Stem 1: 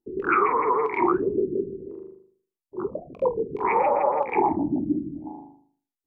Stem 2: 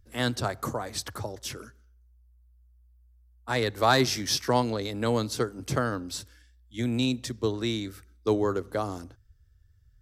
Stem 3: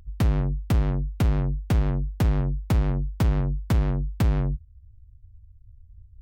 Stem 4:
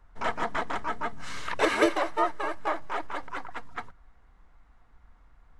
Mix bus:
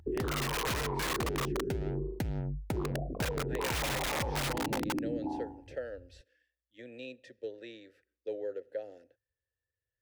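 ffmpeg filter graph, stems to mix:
ffmpeg -i stem1.wav -i stem2.wav -i stem3.wav -filter_complex "[0:a]lowpass=frequency=1100:width=0.5412,lowpass=frequency=1100:width=1.3066,aeval=exprs='(mod(9.44*val(0)+1,2)-1)/9.44':channel_layout=same,volume=-3dB[link_01];[1:a]asplit=3[link_02][link_03][link_04];[link_02]bandpass=frequency=530:width_type=q:width=8,volume=0dB[link_05];[link_03]bandpass=frequency=1840:width_type=q:width=8,volume=-6dB[link_06];[link_04]bandpass=frequency=2480:width_type=q:width=8,volume=-9dB[link_07];[link_05][link_06][link_07]amix=inputs=3:normalize=0,volume=-1.5dB[link_08];[2:a]aphaser=in_gain=1:out_gain=1:delay=2.6:decay=0.28:speed=0.39:type=sinusoidal,highpass=73,volume=-4dB[link_09];[link_08][link_09]amix=inputs=2:normalize=0,asuperstop=centerf=1100:order=4:qfactor=3.5,acompressor=threshold=-27dB:ratio=6,volume=0dB[link_10];[link_01]acontrast=71,alimiter=limit=-23.5dB:level=0:latency=1,volume=0dB[link_11];[link_10][link_11]amix=inputs=2:normalize=0,equalizer=frequency=200:width_type=o:width=0.3:gain=-4.5,acompressor=threshold=-30dB:ratio=6" out.wav

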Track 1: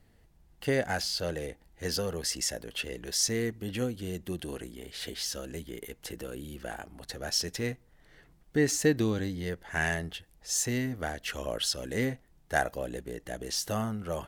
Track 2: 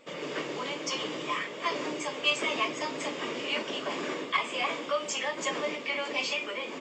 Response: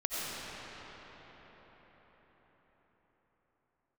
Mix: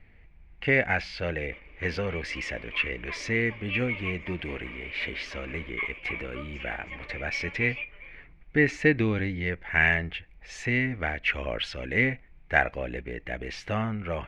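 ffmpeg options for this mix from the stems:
-filter_complex "[0:a]lowshelf=frequency=65:gain=11.5,volume=1dB,asplit=2[link_01][link_02];[1:a]adelay=1450,volume=-16dB[link_03];[link_02]apad=whole_len=364028[link_04];[link_03][link_04]sidechaingate=range=-9dB:threshold=-44dB:ratio=16:detection=peak[link_05];[link_01][link_05]amix=inputs=2:normalize=0,lowpass=frequency=2300:width_type=q:width=8.2"

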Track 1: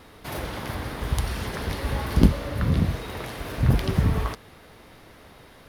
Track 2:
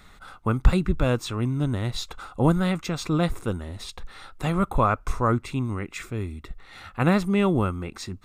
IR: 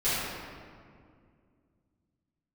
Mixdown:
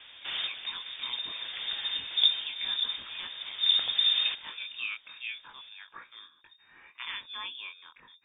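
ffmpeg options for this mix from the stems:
-filter_complex "[0:a]volume=-1.5dB,asplit=2[link_01][link_02];[link_02]volume=-22.5dB[link_03];[1:a]equalizer=frequency=650:width_type=o:width=0.77:gain=-4,flanger=delay=18:depth=7.6:speed=0.33,tiltshelf=frequency=710:gain=-8.5,volume=-12.5dB,asplit=2[link_04][link_05];[link_05]apad=whole_len=250866[link_06];[link_01][link_06]sidechaincompress=threshold=-47dB:ratio=5:attack=23:release=763[link_07];[link_03]aecho=0:1:590|1180|1770|2360:1|0.27|0.0729|0.0197[link_08];[link_07][link_04][link_08]amix=inputs=3:normalize=0,lowpass=frequency=3100:width_type=q:width=0.5098,lowpass=frequency=3100:width_type=q:width=0.6013,lowpass=frequency=3100:width_type=q:width=0.9,lowpass=frequency=3100:width_type=q:width=2.563,afreqshift=-3700"

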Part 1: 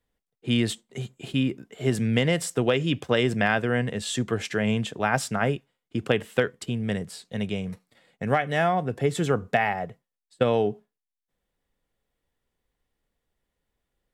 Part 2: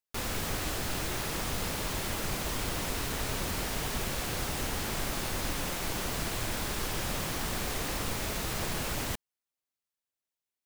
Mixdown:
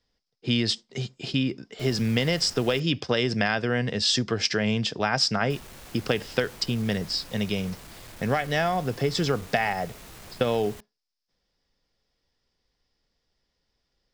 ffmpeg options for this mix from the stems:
ffmpeg -i stem1.wav -i stem2.wav -filter_complex "[0:a]acompressor=threshold=-24dB:ratio=2.5,lowpass=frequency=5100:width_type=q:width=8.4,volume=2dB[link_01];[1:a]asoftclip=type=hard:threshold=-31.5dB,adelay=1650,volume=-10dB,asplit=3[link_02][link_03][link_04];[link_02]atrim=end=2.8,asetpts=PTS-STARTPTS,afade=type=out:start_time=2.796:duration=0.004:curve=hsin[link_05];[link_03]atrim=start=2.8:end=5.5,asetpts=PTS-STARTPTS,volume=0[link_06];[link_04]atrim=start=5.5,asetpts=PTS-STARTPTS,afade=type=in:duration=0.004:curve=hsin[link_07];[link_05][link_06][link_07]concat=n=3:v=0:a=1[link_08];[link_01][link_08]amix=inputs=2:normalize=0" out.wav

